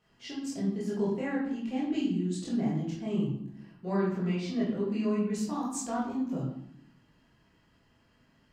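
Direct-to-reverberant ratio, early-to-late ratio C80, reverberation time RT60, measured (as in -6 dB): -7.0 dB, 6.5 dB, 0.80 s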